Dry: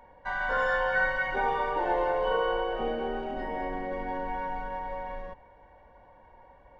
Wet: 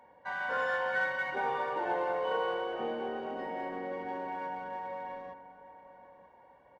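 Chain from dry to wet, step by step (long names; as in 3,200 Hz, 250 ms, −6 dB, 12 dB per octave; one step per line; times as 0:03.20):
in parallel at −9 dB: asymmetric clip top −35 dBFS
on the sum: high-pass filter 140 Hz 12 dB per octave
slap from a distant wall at 160 metres, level −13 dB
level −6.5 dB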